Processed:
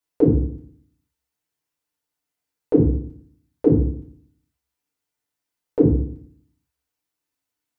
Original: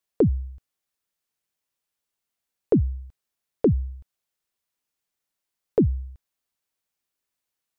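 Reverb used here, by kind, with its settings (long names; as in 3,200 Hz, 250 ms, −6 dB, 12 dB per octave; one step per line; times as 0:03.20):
feedback delay network reverb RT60 0.58 s, low-frequency decay 1.25×, high-frequency decay 0.55×, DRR −5.5 dB
level −5 dB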